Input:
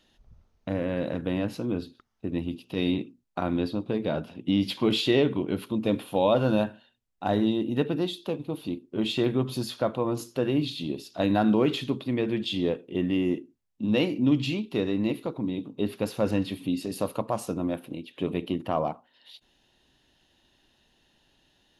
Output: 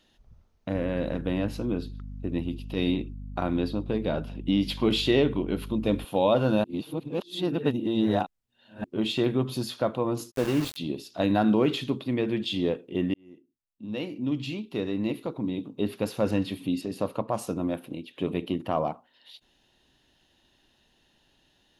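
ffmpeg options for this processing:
ffmpeg -i in.wav -filter_complex "[0:a]asettb=1/sr,asplit=3[link_01][link_02][link_03];[link_01]atrim=end=0.744[link_04];[link_02]atrim=start=0.74:end=6.05,asetpts=PTS-STARTPTS,afade=type=in:duration=0.004:curve=qsin,afade=type=out:start_time=5.306:duration=0.004:curve=qsin,aeval=exprs='val(0)+0.0141*(sin(2*PI*50*n/s)+sin(2*PI*2*50*n/s)/2+sin(2*PI*3*50*n/s)/3+sin(2*PI*4*50*n/s)/4+sin(2*PI*5*50*n/s)/5)':channel_layout=same[link_05];[link_03]atrim=start=6.046[link_06];[link_04][link_05]acrossfade=duration=0.004:curve1=hsin:curve2=qsin[link_07];[link_07][link_06]acrossfade=duration=0.004:curve1=qsin:curve2=hsin,asplit=3[link_08][link_09][link_10];[link_08]afade=type=out:start_time=10.3:duration=0.02[link_11];[link_09]aeval=exprs='val(0)*gte(abs(val(0)),0.0299)':channel_layout=same,afade=type=in:start_time=10.3:duration=0.02,afade=type=out:start_time=10.76:duration=0.02[link_12];[link_10]afade=type=in:start_time=10.76:duration=0.02[link_13];[link_11][link_12][link_13]amix=inputs=3:normalize=0,asettb=1/sr,asplit=3[link_14][link_15][link_16];[link_14]atrim=end=16.814[link_17];[link_15]atrim=start=16.81:end=17.34,asetpts=PTS-STARTPTS,afade=type=in:duration=0.004:curve=qsin,afade=type=out:start_time=0.526:duration=0.004:curve=qsin,lowpass=frequency=3100:poles=1[link_18];[link_16]atrim=start=17.336[link_19];[link_17][link_18]acrossfade=duration=0.004:curve1=hsin:curve2=qsin[link_20];[link_20][link_19]acrossfade=duration=0.004:curve1=qsin:curve2=hsin,asplit=4[link_21][link_22][link_23][link_24];[link_21]atrim=end=6.642[link_25];[link_22]atrim=start=6.638:end=8.842,asetpts=PTS-STARTPTS,areverse[link_26];[link_23]atrim=start=8.838:end=13.14,asetpts=PTS-STARTPTS,afade=type=out:start_time=4.298:duration=0.004:curve=hsin[link_27];[link_24]atrim=start=13.14,asetpts=PTS-STARTPTS,afade=type=in:duration=2.37[link_28];[link_25][link_26]acrossfade=duration=0.004:curve1=hsin:curve2=hsin[link_29];[link_27][link_28]concat=n=2:v=0:a=1[link_30];[link_29][link_30]acrossfade=duration=0.004:curve1=hsin:curve2=hsin" out.wav

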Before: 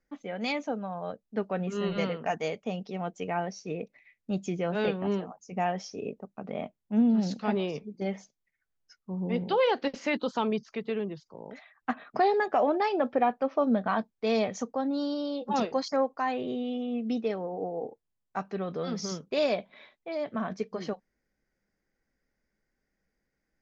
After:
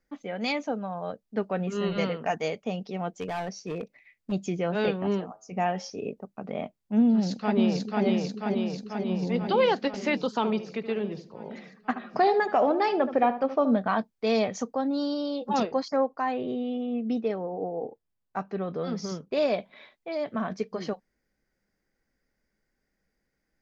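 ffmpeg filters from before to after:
ffmpeg -i in.wav -filter_complex "[0:a]asettb=1/sr,asplit=3[link_01][link_02][link_03];[link_01]atrim=end=3.104[link_04];[link_02]atrim=start=3.1:end=4.32,asetpts=PTS-STARTPTS,afade=type=in:duration=0.004:curve=qsin,afade=type=out:start_time=1.216:duration=0.004:curve=qsin,volume=29.5dB,asoftclip=hard,volume=-29.5dB[link_05];[link_03]atrim=start=4.316[link_06];[link_04][link_05]acrossfade=duration=0.004:curve1=hsin:curve2=qsin[link_07];[link_07][link_06]acrossfade=duration=0.004:curve1=qsin:curve2=hsin,asettb=1/sr,asplit=3[link_08][link_09][link_10];[link_08]atrim=end=5.274[link_11];[link_09]atrim=start=5.27:end=5.9,asetpts=PTS-STARTPTS,afade=type=in:duration=0.004:curve=qsin,afade=type=out:start_time=0.626:duration=0.004:curve=qsin,bandreject=frequency=108.5:width_type=h:width=4,bandreject=frequency=217:width_type=h:width=4,bandreject=frequency=325.5:width_type=h:width=4,bandreject=frequency=434:width_type=h:width=4,bandreject=frequency=542.5:width_type=h:width=4,bandreject=frequency=651:width_type=h:width=4,bandreject=frequency=759.5:width_type=h:width=4,bandreject=frequency=868:width_type=h:width=4,bandreject=frequency=976.5:width_type=h:width=4,bandreject=frequency=1085:width_type=h:width=4,bandreject=frequency=1193.5:width_type=h:width=4,bandreject=frequency=1302:width_type=h:width=4,bandreject=frequency=1410.5:width_type=h:width=4,bandreject=frequency=1519:width_type=h:width=4,bandreject=frequency=1627.5:width_type=h:width=4,bandreject=frequency=1736:width_type=h:width=4,bandreject=frequency=1844.5:width_type=h:width=4,bandreject=frequency=1953:width_type=h:width=4,bandreject=frequency=2061.5:width_type=h:width=4,bandreject=frequency=2170:width_type=h:width=4,bandreject=frequency=2278.5:width_type=h:width=4,bandreject=frequency=2387:width_type=h:width=4,bandreject=frequency=2495.5:width_type=h:width=4,bandreject=frequency=2604:width_type=h:width=4,bandreject=frequency=2712.5:width_type=h:width=4,bandreject=frequency=2821:width_type=h:width=4,bandreject=frequency=2929.5:width_type=h:width=4,bandreject=frequency=3038:width_type=h:width=4,bandreject=frequency=3146.5:width_type=h:width=4,bandreject=frequency=3255:width_type=h:width=4,bandreject=frequency=3363.5:width_type=h:width=4,bandreject=frequency=3472:width_type=h:width=4,bandreject=frequency=3580.5:width_type=h:width=4,bandreject=frequency=3689:width_type=h:width=4[link_12];[link_10]atrim=start=5.896[link_13];[link_11][link_12]acrossfade=duration=0.004:curve1=hsin:curve2=qsin[link_14];[link_14][link_13]acrossfade=duration=0.004:curve1=qsin:curve2=hsin,asplit=2[link_15][link_16];[link_16]afade=type=in:start_time=7.08:duration=0.01,afade=type=out:start_time=8.05:duration=0.01,aecho=0:1:490|980|1470|1960|2450|2940|3430|3920|4410|4900|5390|5880:0.891251|0.623876|0.436713|0.305699|0.213989|0.149793|0.104855|0.0733983|0.0513788|0.0359652|0.0251756|0.0176229[link_17];[link_15][link_17]amix=inputs=2:normalize=0,asplit=3[link_18][link_19][link_20];[link_18]afade=type=out:start_time=10.42:duration=0.02[link_21];[link_19]asplit=2[link_22][link_23];[link_23]adelay=75,lowpass=frequency=2000:poles=1,volume=-11dB,asplit=2[link_24][link_25];[link_25]adelay=75,lowpass=frequency=2000:poles=1,volume=0.29,asplit=2[link_26][link_27];[link_27]adelay=75,lowpass=frequency=2000:poles=1,volume=0.29[link_28];[link_22][link_24][link_26][link_28]amix=inputs=4:normalize=0,afade=type=in:start_time=10.42:duration=0.02,afade=type=out:start_time=13.76:duration=0.02[link_29];[link_20]afade=type=in:start_time=13.76:duration=0.02[link_30];[link_21][link_29][link_30]amix=inputs=3:normalize=0,asettb=1/sr,asplit=3[link_31][link_32][link_33];[link_31]atrim=end=15.634[link_34];[link_32]atrim=start=15.63:end=19.54,asetpts=PTS-STARTPTS,afade=type=in:duration=0.004:curve=qsin,afade=type=out:start_time=3.906:duration=0.004:curve=qsin,highshelf=frequency=2700:gain=-8[link_35];[link_33]atrim=start=19.536[link_36];[link_34][link_35]acrossfade=duration=0.004:curve1=hsin:curve2=qsin[link_37];[link_37][link_36]acrossfade=duration=0.004:curve1=qsin:curve2=hsin,equalizer=frequency=4700:width=7.7:gain=3,volume=2dB" out.wav

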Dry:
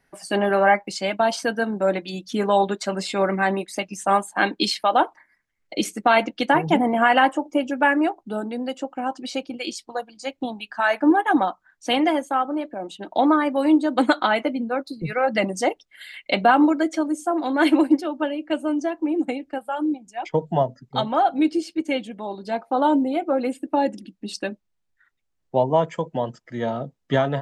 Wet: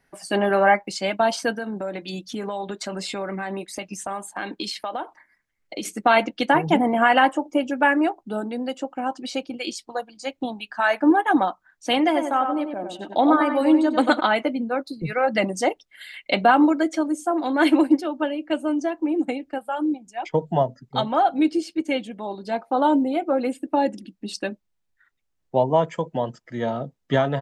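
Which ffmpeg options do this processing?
ffmpeg -i in.wav -filter_complex "[0:a]asplit=3[link_01][link_02][link_03];[link_01]afade=type=out:start_time=1.55:duration=0.02[link_04];[link_02]acompressor=threshold=-26dB:ratio=5:attack=3.2:release=140:knee=1:detection=peak,afade=type=in:start_time=1.55:duration=0.02,afade=type=out:start_time=5.84:duration=0.02[link_05];[link_03]afade=type=in:start_time=5.84:duration=0.02[link_06];[link_04][link_05][link_06]amix=inputs=3:normalize=0,asplit=3[link_07][link_08][link_09];[link_07]afade=type=out:start_time=12.15:duration=0.02[link_10];[link_08]asplit=2[link_11][link_12];[link_12]adelay=96,lowpass=frequency=2400:poles=1,volume=-5.5dB,asplit=2[link_13][link_14];[link_14]adelay=96,lowpass=frequency=2400:poles=1,volume=0.27,asplit=2[link_15][link_16];[link_16]adelay=96,lowpass=frequency=2400:poles=1,volume=0.27,asplit=2[link_17][link_18];[link_18]adelay=96,lowpass=frequency=2400:poles=1,volume=0.27[link_19];[link_11][link_13][link_15][link_17][link_19]amix=inputs=5:normalize=0,afade=type=in:start_time=12.15:duration=0.02,afade=type=out:start_time=14.19:duration=0.02[link_20];[link_09]afade=type=in:start_time=14.19:duration=0.02[link_21];[link_10][link_20][link_21]amix=inputs=3:normalize=0" out.wav

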